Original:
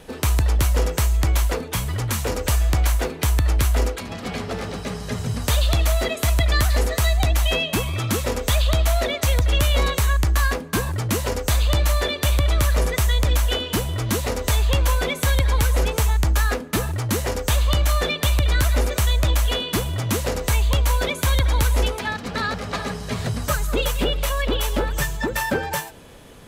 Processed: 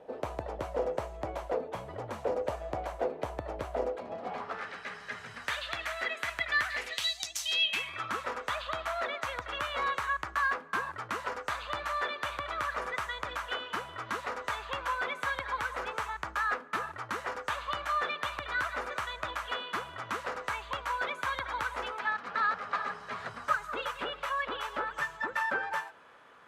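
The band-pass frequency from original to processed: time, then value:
band-pass, Q 2.3
4.18 s 620 Hz
4.69 s 1700 Hz
6.7 s 1700 Hz
7.32 s 6700 Hz
8.05 s 1300 Hz

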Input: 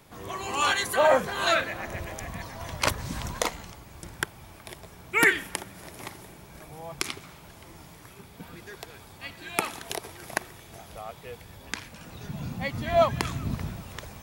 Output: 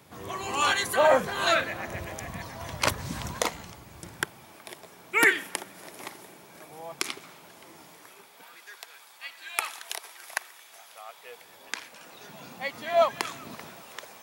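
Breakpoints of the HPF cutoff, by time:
3.96 s 75 Hz
4.58 s 250 Hz
7.84 s 250 Hz
8.64 s 1000 Hz
11.05 s 1000 Hz
11.49 s 430 Hz

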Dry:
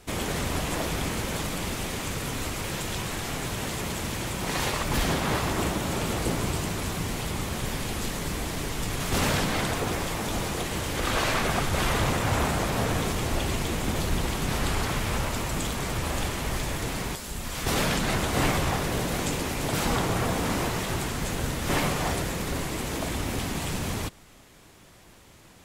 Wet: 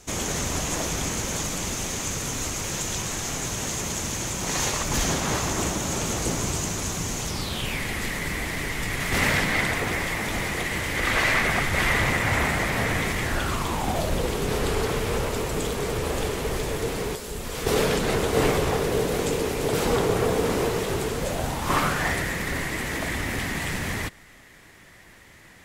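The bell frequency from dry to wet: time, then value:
bell +13 dB 0.47 oct
7.25 s 6500 Hz
7.82 s 2000 Hz
13.2 s 2000 Hz
14.29 s 440 Hz
21.13 s 440 Hz
22.08 s 1900 Hz

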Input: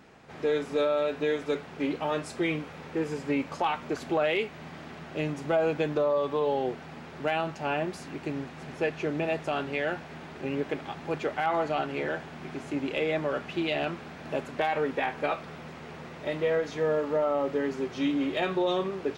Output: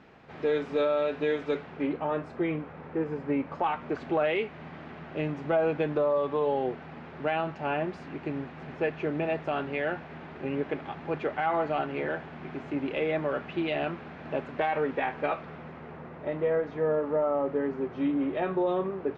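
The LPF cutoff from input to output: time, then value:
1.55 s 3600 Hz
2.02 s 1600 Hz
3.36 s 1600 Hz
4.06 s 2600 Hz
15.3 s 2600 Hz
16.08 s 1500 Hz

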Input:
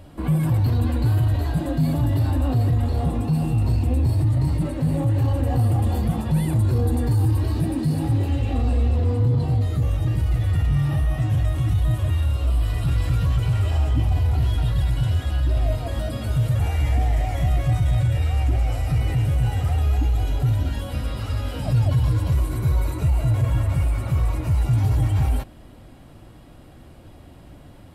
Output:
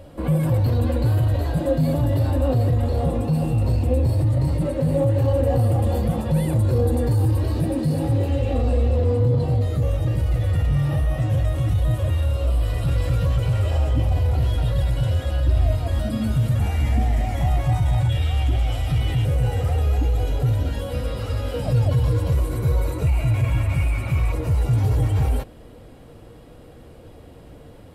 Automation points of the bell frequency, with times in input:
bell +13.5 dB 0.3 oct
530 Hz
from 15.48 s 81 Hz
from 16.05 s 220 Hz
from 17.41 s 860 Hz
from 18.09 s 3300 Hz
from 19.25 s 490 Hz
from 23.07 s 2400 Hz
from 24.32 s 470 Hz

